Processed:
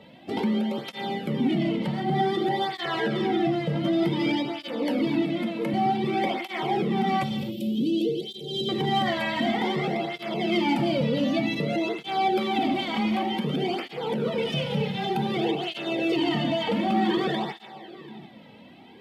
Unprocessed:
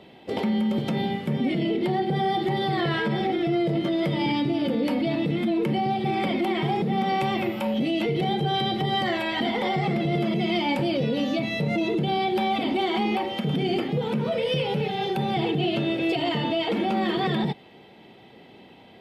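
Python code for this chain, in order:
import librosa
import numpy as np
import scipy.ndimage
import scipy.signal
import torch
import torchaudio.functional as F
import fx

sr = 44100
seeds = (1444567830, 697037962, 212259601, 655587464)

p1 = fx.highpass(x, sr, hz=240.0, slope=12, at=(5.22, 5.74))
p2 = p1 + 10.0 ** (-20.0 / 20.0) * np.pad(p1, (int(738 * sr / 1000.0), 0))[:len(p1)]
p3 = 10.0 ** (-22.0 / 20.0) * (np.abs((p2 / 10.0 ** (-22.0 / 20.0) + 3.0) % 4.0 - 2.0) - 1.0)
p4 = p2 + (p3 * librosa.db_to_amplitude(-11.0))
p5 = fx.cheby1_bandstop(p4, sr, low_hz=460.0, high_hz=3300.0, order=3, at=(7.23, 8.69))
p6 = fx.rev_gated(p5, sr, seeds[0], gate_ms=300, shape='flat', drr_db=8.5)
y = fx.flanger_cancel(p6, sr, hz=0.54, depth_ms=2.9)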